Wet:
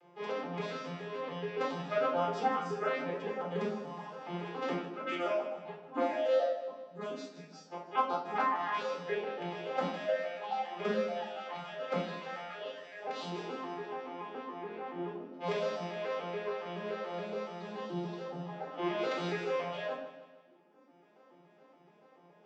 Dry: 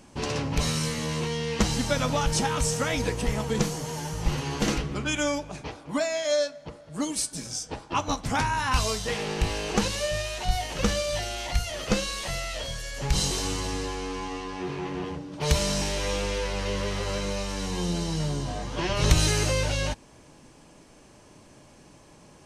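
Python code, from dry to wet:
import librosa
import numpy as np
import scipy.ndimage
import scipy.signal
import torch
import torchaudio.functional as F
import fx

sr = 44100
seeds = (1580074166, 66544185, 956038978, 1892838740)

y = fx.vocoder_arp(x, sr, chord='minor triad', root=53, every_ms=142)
y = fx.dereverb_blind(y, sr, rt60_s=1.8)
y = fx.dmg_crackle(y, sr, seeds[0], per_s=150.0, level_db=-43.0, at=(3.77, 4.52), fade=0.02)
y = fx.bandpass_edges(y, sr, low_hz=520.0, high_hz=3000.0)
y = fx.echo_feedback(y, sr, ms=156, feedback_pct=50, wet_db=-13)
y = fx.room_shoebox(y, sr, seeds[1], volume_m3=760.0, walls='furnished', distance_m=4.0)
y = y * 10.0 ** (-3.5 / 20.0)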